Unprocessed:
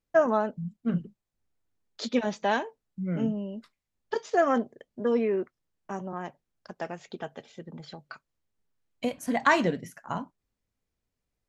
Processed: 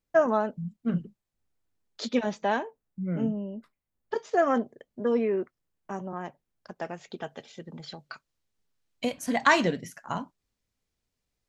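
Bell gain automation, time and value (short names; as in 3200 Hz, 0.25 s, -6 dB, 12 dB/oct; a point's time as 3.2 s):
bell 4800 Hz 2.1 oct
2.19 s 0 dB
2.59 s -7 dB
3.27 s -7 dB
3.58 s -13 dB
4.47 s -2 dB
6.81 s -2 dB
7.51 s +5.5 dB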